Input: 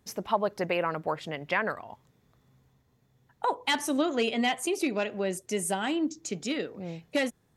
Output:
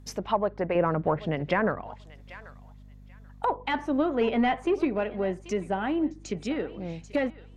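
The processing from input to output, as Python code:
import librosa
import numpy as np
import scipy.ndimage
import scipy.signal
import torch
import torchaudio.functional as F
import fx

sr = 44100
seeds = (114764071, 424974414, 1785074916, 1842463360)

p1 = np.clip(10.0 ** (26.0 / 20.0) * x, -1.0, 1.0) / 10.0 ** (26.0 / 20.0)
p2 = x + F.gain(torch.from_numpy(p1), -11.0).numpy()
p3 = fx.leveller(p2, sr, passes=1, at=(4.21, 4.85))
p4 = p3 + fx.echo_thinned(p3, sr, ms=786, feedback_pct=19, hz=500.0, wet_db=-18, dry=0)
p5 = fx.env_lowpass_down(p4, sr, base_hz=1700.0, full_db=-26.0)
p6 = fx.low_shelf(p5, sr, hz=400.0, db=10.0, at=(0.75, 1.82))
y = fx.add_hum(p6, sr, base_hz=50, snr_db=20)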